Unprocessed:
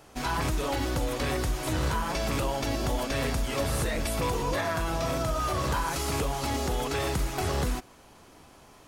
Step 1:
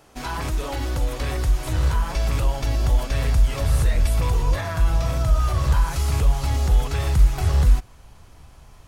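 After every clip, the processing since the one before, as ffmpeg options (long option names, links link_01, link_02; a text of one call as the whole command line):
ffmpeg -i in.wav -af "asubboost=boost=8:cutoff=100" out.wav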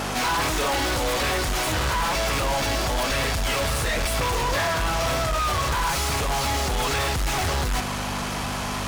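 ffmpeg -i in.wav -filter_complex "[0:a]areverse,acompressor=threshold=-25dB:ratio=6,areverse,aeval=exprs='val(0)+0.00891*(sin(2*PI*50*n/s)+sin(2*PI*2*50*n/s)/2+sin(2*PI*3*50*n/s)/3+sin(2*PI*4*50*n/s)/4+sin(2*PI*5*50*n/s)/5)':channel_layout=same,asplit=2[link_01][link_02];[link_02]highpass=frequency=720:poles=1,volume=36dB,asoftclip=type=tanh:threshold=-19dB[link_03];[link_01][link_03]amix=inputs=2:normalize=0,lowpass=frequency=5900:poles=1,volume=-6dB,volume=1.5dB" out.wav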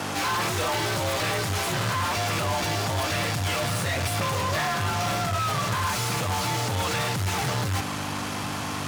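ffmpeg -i in.wav -af "afreqshift=49,volume=-2.5dB" out.wav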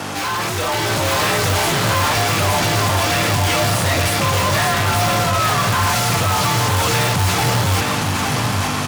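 ffmpeg -i in.wav -filter_complex "[0:a]aecho=1:1:871:0.596,asplit=2[link_01][link_02];[link_02]aeval=exprs='(mod(7.94*val(0)+1,2)-1)/7.94':channel_layout=same,volume=-4.5dB[link_03];[link_01][link_03]amix=inputs=2:normalize=0,dynaudnorm=framelen=310:gausssize=5:maxgain=4.5dB" out.wav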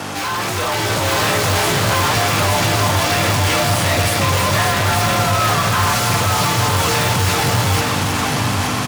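ffmpeg -i in.wav -af "aecho=1:1:318:0.473" out.wav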